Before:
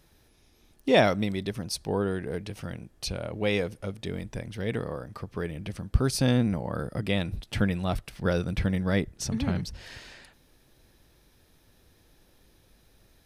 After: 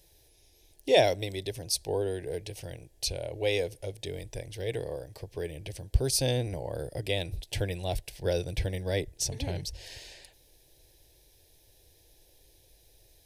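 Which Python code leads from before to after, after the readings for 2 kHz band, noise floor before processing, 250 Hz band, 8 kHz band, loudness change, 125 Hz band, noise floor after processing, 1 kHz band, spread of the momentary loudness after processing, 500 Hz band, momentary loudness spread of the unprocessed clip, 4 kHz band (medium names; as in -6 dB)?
-5.0 dB, -62 dBFS, -11.0 dB, +4.5 dB, -2.5 dB, -4.5 dB, -62 dBFS, -3.5 dB, 15 LU, -0.5 dB, 14 LU, +1.5 dB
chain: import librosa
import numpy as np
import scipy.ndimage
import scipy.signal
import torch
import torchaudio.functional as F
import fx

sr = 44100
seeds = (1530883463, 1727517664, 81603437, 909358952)

y = fx.high_shelf(x, sr, hz=4400.0, db=6.5)
y = fx.fixed_phaser(y, sr, hz=520.0, stages=4)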